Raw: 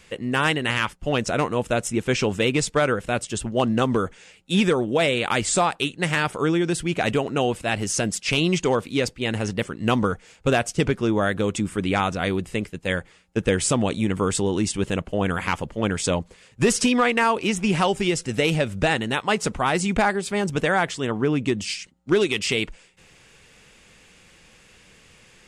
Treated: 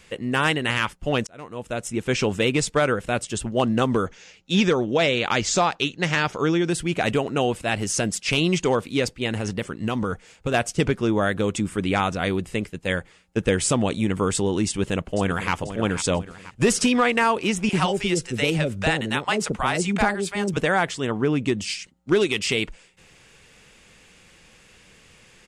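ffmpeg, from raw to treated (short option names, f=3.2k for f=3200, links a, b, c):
-filter_complex "[0:a]asettb=1/sr,asplit=3[a][b][c];[a]atrim=end=4.064[d];[b]atrim=start=4.06:end=6.65,asetpts=PTS-STARTPTS,afade=t=in:d=0.004:c=qsin,afade=t=out:st=2.586:d=0.004:c=qsin,highshelf=f=7.4k:t=q:w=3:g=-6.5[e];[c]atrim=start=6.646[f];[d][e]acrossfade=d=0.004:c1=hsin:c2=qsin[g];[g][f]acrossfade=d=0.004:c1=qsin:c2=hsin,asettb=1/sr,asplit=3[h][i][j];[h]atrim=end=9.264[k];[i]atrim=start=9.26:end=10.54,asetpts=PTS-STARTPTS,afade=t=in:d=0.004:c=qsin,afade=t=out:st=1.276:d=0.004:c=qsin,acompressor=threshold=-20dB:ratio=6:attack=3.2:release=140:knee=1:detection=peak[l];[j]atrim=start=10.536[m];[k][l]acrossfade=d=0.004:c1=hsin:c2=qsin[n];[n][m]acrossfade=d=0.004:c1=qsin:c2=hsin,asplit=2[o][p];[p]afade=t=in:st=14.67:d=0.01,afade=t=out:st=15.52:d=0.01,aecho=0:1:490|980|1470|1960|2450:0.266073|0.133036|0.0665181|0.0332591|0.0166295[q];[o][q]amix=inputs=2:normalize=0,asettb=1/sr,asplit=3[r][s][t];[r]atrim=end=17.694[u];[s]atrim=start=17.69:end=20.57,asetpts=PTS-STARTPTS,afade=t=in:d=0.004:c=qsin,afade=t=out:st=2.876:d=0.004:c=qsin,acrossover=split=620[v][w];[v]adelay=40[x];[x][w]amix=inputs=2:normalize=0,atrim=end_sample=127008[y];[t]atrim=start=20.566[z];[u][y]acrossfade=d=0.004:c1=hsin:c2=qsin[aa];[aa][z]acrossfade=d=0.004:c1=qsin:c2=hsin,asplit=2[ab][ac];[ab]atrim=end=1.27,asetpts=PTS-STARTPTS,afade=t=out:st=1.266:d=0.004:c=hsin[ad];[ac]atrim=start=1.27,asetpts=PTS-STARTPTS,afade=t=in:d=0.94[ae];[ad][ae]concat=n=2:v=0:a=1"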